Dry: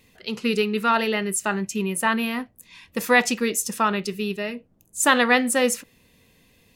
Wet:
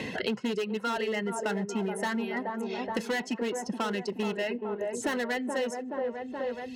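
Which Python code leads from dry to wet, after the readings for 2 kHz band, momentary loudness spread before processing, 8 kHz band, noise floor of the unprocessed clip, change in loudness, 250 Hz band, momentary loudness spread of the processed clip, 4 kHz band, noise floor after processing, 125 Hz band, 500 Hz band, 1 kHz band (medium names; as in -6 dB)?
-11.0 dB, 13 LU, -16.0 dB, -60 dBFS, -9.5 dB, -6.5 dB, 3 LU, -9.5 dB, -43 dBFS, -6.0 dB, -5.0 dB, -10.0 dB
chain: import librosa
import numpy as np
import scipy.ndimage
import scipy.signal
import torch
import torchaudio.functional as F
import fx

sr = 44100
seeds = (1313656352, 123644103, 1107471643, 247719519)

p1 = scipy.signal.sosfilt(scipy.signal.butter(2, 6600.0, 'lowpass', fs=sr, output='sos'), x)
p2 = fx.spec_box(p1, sr, start_s=1.79, length_s=0.58, low_hz=2200.0, high_hz=5200.0, gain_db=-8)
p3 = fx.dereverb_blind(p2, sr, rt60_s=1.2)
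p4 = fx.high_shelf(p3, sr, hz=4600.0, db=-9.5)
p5 = fx.rider(p4, sr, range_db=5, speed_s=0.5)
p6 = np.clip(p5, -10.0 ** (-22.0 / 20.0), 10.0 ** (-22.0 / 20.0))
p7 = fx.notch_comb(p6, sr, f0_hz=1200.0)
p8 = p7 + fx.echo_wet_bandpass(p7, sr, ms=425, feedback_pct=49, hz=540.0, wet_db=-5, dry=0)
p9 = fx.band_squash(p8, sr, depth_pct=100)
y = p9 * 10.0 ** (-4.0 / 20.0)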